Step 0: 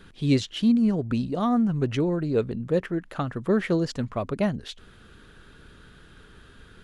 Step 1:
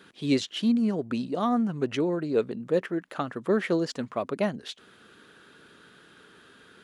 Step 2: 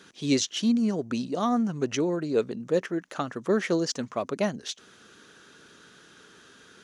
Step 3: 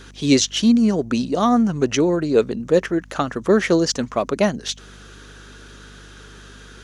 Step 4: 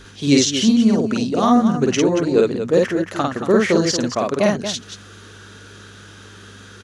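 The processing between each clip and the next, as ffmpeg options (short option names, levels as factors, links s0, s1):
-af "highpass=240"
-af "equalizer=f=6100:t=o:w=0.58:g=13.5"
-af "aeval=exprs='val(0)+0.00251*(sin(2*PI*50*n/s)+sin(2*PI*2*50*n/s)/2+sin(2*PI*3*50*n/s)/3+sin(2*PI*4*50*n/s)/4+sin(2*PI*5*50*n/s)/5)':c=same,volume=2.66"
-af "aecho=1:1:49.56|230.3:0.891|0.355,volume=0.891"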